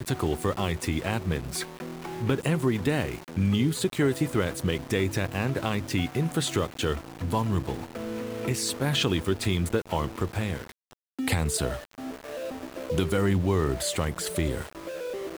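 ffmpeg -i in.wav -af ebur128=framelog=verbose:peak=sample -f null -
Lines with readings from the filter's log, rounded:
Integrated loudness:
  I:         -28.3 LUFS
  Threshold: -38.4 LUFS
Loudness range:
  LRA:         2.9 LU
  Threshold: -48.3 LUFS
  LRA low:   -29.8 LUFS
  LRA high:  -26.9 LUFS
Sample peak:
  Peak:      -11.8 dBFS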